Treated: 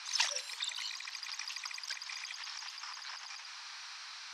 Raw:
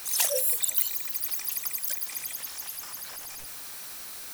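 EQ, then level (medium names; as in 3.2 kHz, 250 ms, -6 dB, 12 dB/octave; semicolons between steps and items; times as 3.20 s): elliptic band-pass 930–5300 Hz, stop band 80 dB; +1.0 dB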